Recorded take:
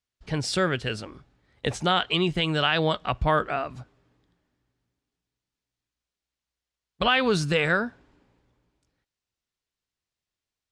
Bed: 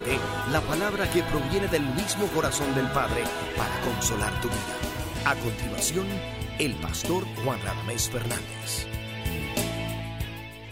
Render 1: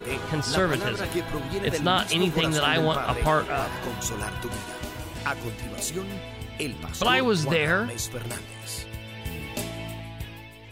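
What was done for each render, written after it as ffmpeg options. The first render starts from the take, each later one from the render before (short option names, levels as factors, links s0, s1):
-filter_complex "[1:a]volume=0.631[s0];[0:a][s0]amix=inputs=2:normalize=0"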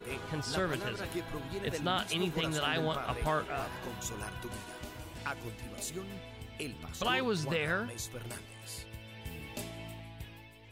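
-af "volume=0.335"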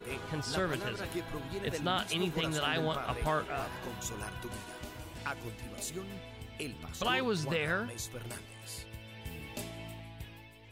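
-af anull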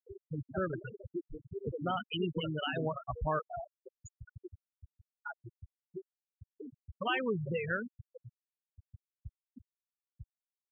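-af "afftfilt=real='re*gte(hypot(re,im),0.0794)':imag='im*gte(hypot(re,im),0.0794)':win_size=1024:overlap=0.75"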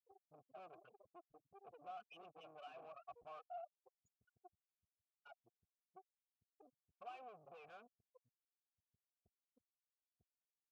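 -filter_complex "[0:a]aeval=exprs='(tanh(141*val(0)+0.75)-tanh(0.75))/141':c=same,asplit=3[s0][s1][s2];[s0]bandpass=f=730:t=q:w=8,volume=1[s3];[s1]bandpass=f=1090:t=q:w=8,volume=0.501[s4];[s2]bandpass=f=2440:t=q:w=8,volume=0.355[s5];[s3][s4][s5]amix=inputs=3:normalize=0"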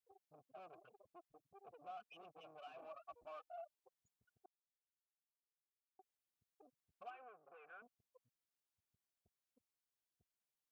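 -filter_complex "[0:a]asettb=1/sr,asplit=3[s0][s1][s2];[s0]atrim=end=2.794[s3];[s1]atrim=start=2.79:end=3.74,asetpts=PTS-STARTPTS,afade=t=in:d=0.004:c=qsin,afade=t=out:st=0.946:d=0.004:c=qsin,aecho=1:1:3.4:0.65,atrim=end_sample=41895[s4];[s2]atrim=start=3.736[s5];[s3][s4]acrossfade=d=0.004:c1=hsin:c2=qsin[s6];[s6][s5]acrossfade=d=0.004:c1=qsin:c2=hsin,asettb=1/sr,asplit=3[s7][s8][s9];[s7]atrim=end=7.104[s10];[s8]atrim=start=7.1:end=7.82,asetpts=PTS-STARTPTS,afade=t=in:d=0.004:c=qsin,afade=t=out:st=0.716:d=0.004:c=qsin,highpass=360,equalizer=f=630:t=q:w=4:g=-7,equalizer=f=890:t=q:w=4:g=-5,equalizer=f=1500:t=q:w=4:g=8,lowpass=f=2400:w=0.5412,lowpass=f=2400:w=1.3066[s11];[s9]atrim=start=7.816[s12];[s10][s11]acrossfade=d=0.004:c1=hsin:c2=qsin[s13];[s13][s12]acrossfade=d=0.004:c1=qsin:c2=hsin,asplit=3[s14][s15][s16];[s14]atrim=end=4.46,asetpts=PTS-STARTPTS,afade=t=out:st=4.456:d=0.004:c=hsin[s17];[s15]atrim=start=4.46:end=5.99,asetpts=PTS-STARTPTS,volume=0[s18];[s16]atrim=start=5.99,asetpts=PTS-STARTPTS,afade=t=in:d=0.004:c=hsin[s19];[s17][s18][s19]concat=n=3:v=0:a=1"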